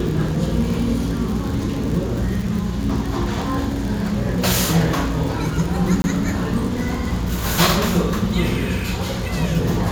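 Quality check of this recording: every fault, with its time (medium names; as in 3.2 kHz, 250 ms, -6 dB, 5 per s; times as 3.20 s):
crackle 64 per s -24 dBFS
6.02–6.04 s: dropout 20 ms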